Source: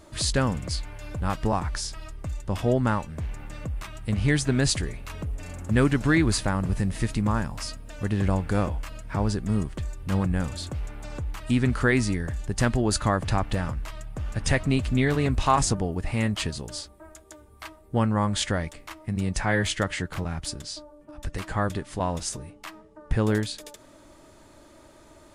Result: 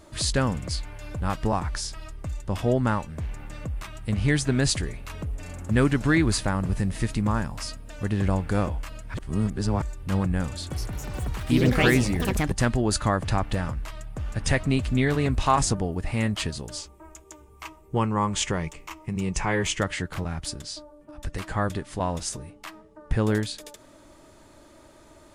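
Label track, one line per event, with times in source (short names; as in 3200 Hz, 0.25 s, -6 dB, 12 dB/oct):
9.140000	9.820000	reverse
10.480000	12.770000	echoes that change speed 0.223 s, each echo +4 st, echoes 3
16.770000	19.810000	ripple EQ crests per octave 0.74, crest to trough 8 dB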